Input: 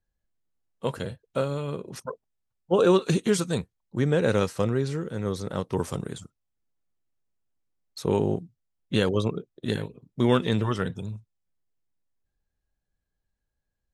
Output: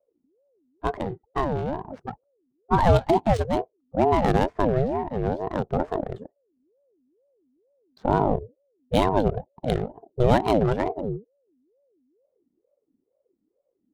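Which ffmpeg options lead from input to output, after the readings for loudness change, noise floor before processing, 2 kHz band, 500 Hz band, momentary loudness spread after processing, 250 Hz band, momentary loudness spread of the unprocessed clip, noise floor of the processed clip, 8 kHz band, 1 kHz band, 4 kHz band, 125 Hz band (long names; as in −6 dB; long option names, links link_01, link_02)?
+2.0 dB, −83 dBFS, 0.0 dB, +2.0 dB, 13 LU, +0.5 dB, 16 LU, −76 dBFS, can't be measured, +10.0 dB, −3.0 dB, +1.5 dB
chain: -af "adynamicsmooth=sensitivity=4.5:basefreq=870,lowshelf=frequency=220:gain=8.5,aeval=exprs='val(0)*sin(2*PI*410*n/s+410*0.4/2.2*sin(2*PI*2.2*n/s))':channel_layout=same,volume=2dB"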